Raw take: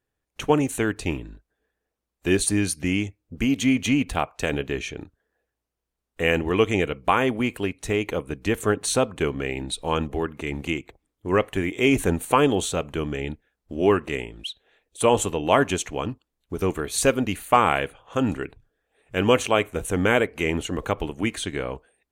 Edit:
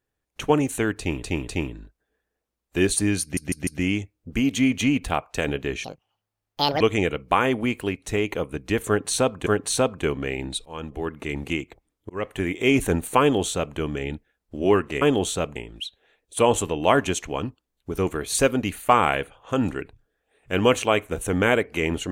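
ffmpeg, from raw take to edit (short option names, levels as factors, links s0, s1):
-filter_complex "[0:a]asplit=13[s0][s1][s2][s3][s4][s5][s6][s7][s8][s9][s10][s11][s12];[s0]atrim=end=1.232[s13];[s1]atrim=start=0.978:end=1.232[s14];[s2]atrim=start=0.978:end=2.872[s15];[s3]atrim=start=2.718:end=2.872[s16];[s4]atrim=start=2.718:end=2.872[s17];[s5]atrim=start=2.718:end=4.894[s18];[s6]atrim=start=4.89:end=6.57,asetpts=PTS-STARTPTS,asetrate=76734,aresample=44100,atrim=end_sample=42579,asetpts=PTS-STARTPTS[s19];[s7]atrim=start=6.566:end=9.232[s20];[s8]atrim=start=8.638:end=9.83,asetpts=PTS-STARTPTS,afade=t=out:st=1.188:d=0.004:c=hsin:silence=0.0944061[s21];[s9]atrim=start=9.83:end=11.27,asetpts=PTS-STARTPTS,afade=t=in:d=0.54:silence=0.0944061,afade=t=out:st=1.436:d=0.004:c=hsin[s22];[s10]atrim=start=11.27:end=14.192,asetpts=PTS-STARTPTS,afade=t=in:d=0.44:c=qsin[s23];[s11]atrim=start=12.378:end=12.922[s24];[s12]atrim=start=14.188[s25];[s13][s14]acrossfade=d=0.004:c1=hsin:c2=hsin[s26];[s26][s15]acrossfade=d=0.004:c1=hsin:c2=hsin[s27];[s27][s16]acrossfade=d=0.004:c1=hsin:c2=hsin[s28];[s28][s17]acrossfade=d=0.004:c1=hsin:c2=hsin[s29];[s29][s18]acrossfade=d=0.004:c1=hsin:c2=hsin[s30];[s30][s19]acrossfade=d=0.004:c1=hsin:c2=hsin[s31];[s31][s20]acrossfade=d=0.004:c1=hsin:c2=hsin[s32];[s21][s22][s23]concat=n=3:v=0:a=1[s33];[s32][s33]acrossfade=d=0.004:c1=hsin:c2=hsin[s34];[s34][s24]acrossfade=d=0.004:c1=hsin:c2=hsin[s35];[s35][s25]acrossfade=d=0.004:c1=hsin:c2=hsin"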